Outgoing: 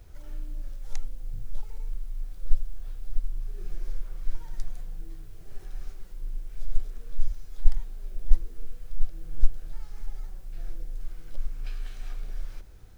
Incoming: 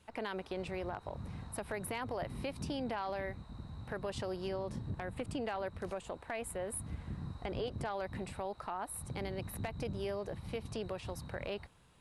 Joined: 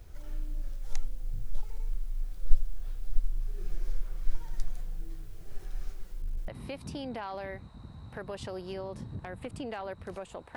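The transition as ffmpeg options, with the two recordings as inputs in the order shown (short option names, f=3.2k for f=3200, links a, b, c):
-filter_complex "[0:a]asettb=1/sr,asplit=3[a][b][c];[a]atrim=end=6.084[d];[b]atrim=start=6.08:end=6.48,asetpts=PTS-STARTPTS,afade=t=in:d=0.004:c=qsin,afade=t=out:st=0.396:d=0.004:c=qsin,volume=28.5dB,asoftclip=hard,volume=-28.5dB[e];[c]atrim=start=6.476[f];[d][e]acrossfade=d=0.004:c1=hsin:c2=qsin[g];[g][f]acrossfade=d=0.004:c1=qsin:c2=hsin,apad=whole_dur=10.56,atrim=end=10.56,atrim=end=6.482[h];[1:a]atrim=start=2.228:end=6.31[i];[h][i]acrossfade=d=0.004:c1=hsin:c2=hsin"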